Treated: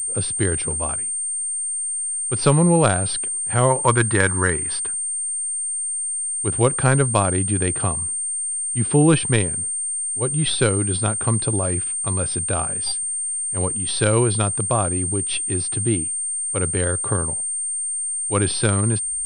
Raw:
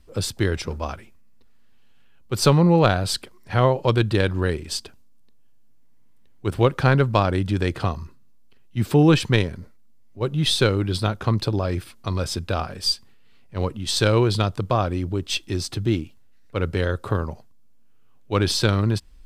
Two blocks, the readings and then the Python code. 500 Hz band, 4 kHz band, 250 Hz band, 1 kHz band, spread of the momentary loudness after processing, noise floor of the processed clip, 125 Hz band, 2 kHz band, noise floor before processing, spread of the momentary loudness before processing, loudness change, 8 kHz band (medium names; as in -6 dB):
0.0 dB, -4.5 dB, 0.0 dB, +1.0 dB, 5 LU, -26 dBFS, 0.0 dB, +2.0 dB, -48 dBFS, 12 LU, +2.5 dB, +18.0 dB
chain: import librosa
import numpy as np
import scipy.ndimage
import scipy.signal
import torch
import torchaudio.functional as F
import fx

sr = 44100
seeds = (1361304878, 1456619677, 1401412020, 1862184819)

y = fx.spec_box(x, sr, start_s=3.7, length_s=2.35, low_hz=860.0, high_hz=2300.0, gain_db=9)
y = fx.pwm(y, sr, carrier_hz=8700.0)